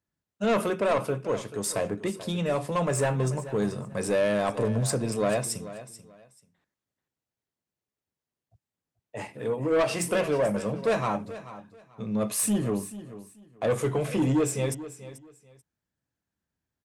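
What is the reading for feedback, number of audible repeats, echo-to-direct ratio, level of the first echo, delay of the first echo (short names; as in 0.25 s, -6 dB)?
22%, 2, -15.0 dB, -15.0 dB, 0.436 s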